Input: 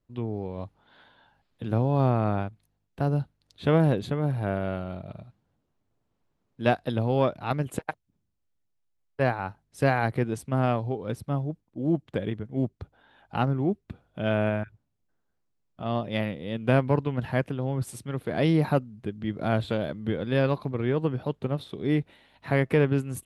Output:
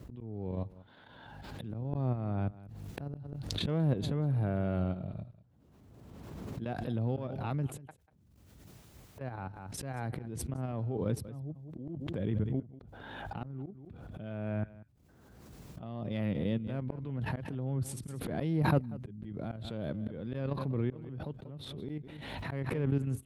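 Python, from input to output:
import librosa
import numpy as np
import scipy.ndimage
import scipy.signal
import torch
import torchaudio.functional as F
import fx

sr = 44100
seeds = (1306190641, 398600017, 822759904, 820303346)

p1 = 10.0 ** (-23.0 / 20.0) * np.tanh(x / 10.0 ** (-23.0 / 20.0))
p2 = x + F.gain(torch.from_numpy(p1), -11.5).numpy()
p3 = fx.level_steps(p2, sr, step_db=11)
p4 = scipy.signal.sosfilt(scipy.signal.butter(4, 49.0, 'highpass', fs=sr, output='sos'), p3)
p5 = fx.low_shelf(p4, sr, hz=410.0, db=10.0)
p6 = fx.auto_swell(p5, sr, attack_ms=546.0)
p7 = p6 + 10.0 ** (-18.5 / 20.0) * np.pad(p6, (int(191 * sr / 1000.0), 0))[:len(p6)]
p8 = fx.pre_swell(p7, sr, db_per_s=27.0)
y = F.gain(torch.from_numpy(p8), -5.0).numpy()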